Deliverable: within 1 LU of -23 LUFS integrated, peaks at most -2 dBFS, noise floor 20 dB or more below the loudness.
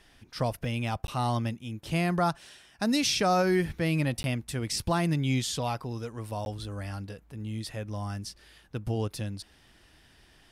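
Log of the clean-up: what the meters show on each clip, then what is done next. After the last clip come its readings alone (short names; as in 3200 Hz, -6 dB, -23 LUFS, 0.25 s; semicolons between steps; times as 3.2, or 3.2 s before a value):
dropouts 3; longest dropout 11 ms; loudness -30.0 LUFS; peak -15.5 dBFS; loudness target -23.0 LUFS
-> interpolate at 1.07/4.23/6.45, 11 ms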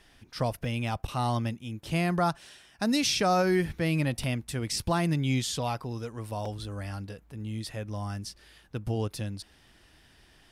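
dropouts 0; loudness -30.0 LUFS; peak -15.5 dBFS; loudness target -23.0 LUFS
-> gain +7 dB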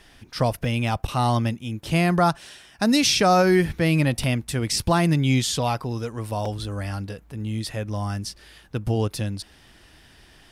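loudness -23.0 LUFS; peak -8.5 dBFS; noise floor -53 dBFS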